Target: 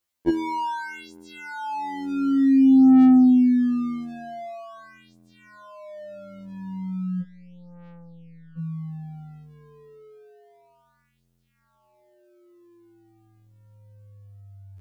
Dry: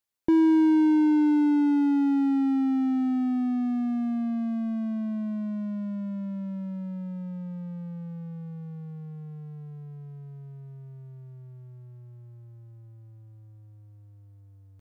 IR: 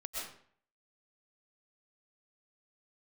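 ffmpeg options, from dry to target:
-filter_complex "[0:a]asplit=3[s0][s1][s2];[s0]afade=t=out:st=7.21:d=0.02[s3];[s1]aeval=exprs='(tanh(708*val(0)+0.5)-tanh(0.5))/708':c=same,afade=t=in:st=7.21:d=0.02,afade=t=out:st=8.57:d=0.02[s4];[s2]afade=t=in:st=8.57:d=0.02[s5];[s3][s4][s5]amix=inputs=3:normalize=0,afftfilt=real='re*2*eq(mod(b,4),0)':imag='im*2*eq(mod(b,4),0)':win_size=2048:overlap=0.75,volume=2.51"

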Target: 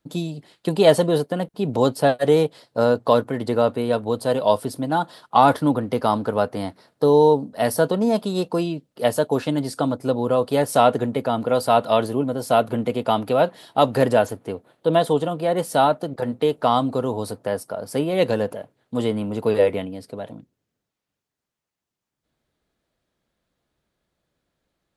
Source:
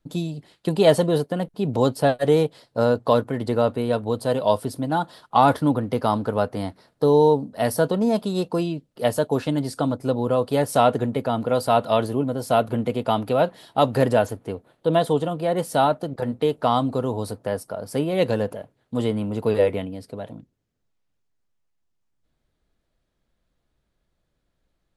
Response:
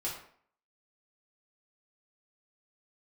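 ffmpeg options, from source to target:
-af "highpass=f=150:p=1,volume=1.26"

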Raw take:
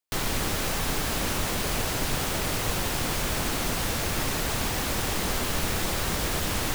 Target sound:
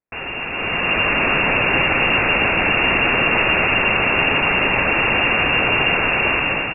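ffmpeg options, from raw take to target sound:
-filter_complex "[0:a]lowpass=f=2400:t=q:w=0.5098,lowpass=f=2400:t=q:w=0.6013,lowpass=f=2400:t=q:w=0.9,lowpass=f=2400:t=q:w=2.563,afreqshift=-2800,asplit=2[s0][s1];[s1]alimiter=limit=0.0668:level=0:latency=1:release=18,volume=0.75[s2];[s0][s2]amix=inputs=2:normalize=0,dynaudnorm=f=490:g=3:m=5.31,tiltshelf=f=670:g=8,aecho=1:1:267:0.473,volume=1.12"

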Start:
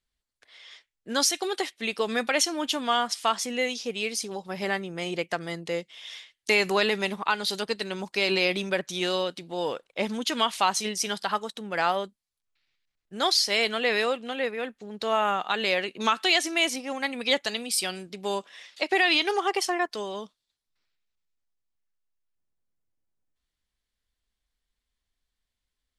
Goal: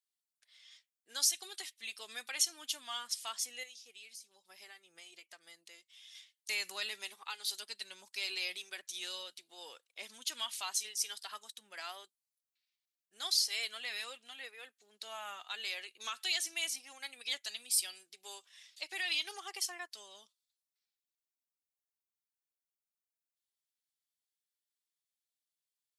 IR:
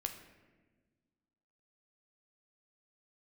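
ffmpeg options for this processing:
-filter_complex "[0:a]aderivative,asettb=1/sr,asplit=3[s0][s1][s2];[s0]atrim=end=3.634[s3];[s1]atrim=start=3.63:end=6.15,asetpts=PTS-STARTPTS,afade=t=in:d=0.004:c=qsin,afade=t=out:st=2.516:d=0.004:c=qsin,acompressor=threshold=0.00282:ratio=2.5[s4];[s2]atrim=start=6.146[s5];[s3][s4]acrossfade=d=0.004:c1=hsin:c2=qsin[s6];[s6][s5]acrossfade=d=0.004:c1=qsin:c2=hsin,flanger=delay=2.3:depth=1.2:regen=-43:speed=0.82:shape=triangular"

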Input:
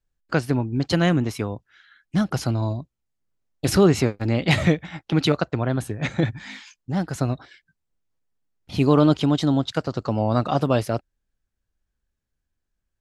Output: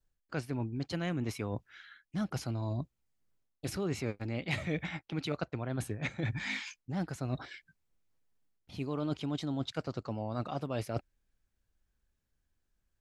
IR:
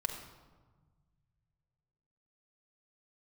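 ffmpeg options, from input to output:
-af "areverse,acompressor=threshold=0.0251:ratio=8,areverse,adynamicequalizer=threshold=0.00112:dfrequency=2300:dqfactor=4.5:tfrequency=2300:tqfactor=4.5:attack=5:release=100:ratio=0.375:range=3:mode=boostabove:tftype=bell"

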